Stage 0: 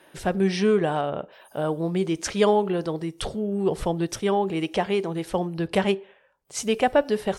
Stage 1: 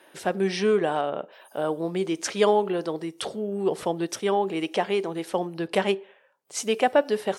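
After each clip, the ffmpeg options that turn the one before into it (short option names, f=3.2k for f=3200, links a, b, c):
-af "highpass=250"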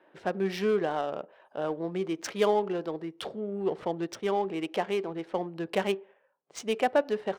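-af "adynamicsmooth=sensitivity=4.5:basefreq=1.8k,volume=-4.5dB"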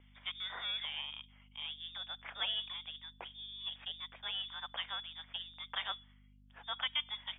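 -filter_complex "[0:a]lowpass=f=3.2k:t=q:w=0.5098,lowpass=f=3.2k:t=q:w=0.6013,lowpass=f=3.2k:t=q:w=0.9,lowpass=f=3.2k:t=q:w=2.563,afreqshift=-3800,aeval=exprs='val(0)+0.00631*(sin(2*PI*50*n/s)+sin(2*PI*2*50*n/s)/2+sin(2*PI*3*50*n/s)/3+sin(2*PI*4*50*n/s)/4+sin(2*PI*5*50*n/s)/5)':c=same,acrossover=split=420 2500:gain=0.178 1 0.0631[a][b][c];[a][b][c]amix=inputs=3:normalize=0,volume=-2.5dB"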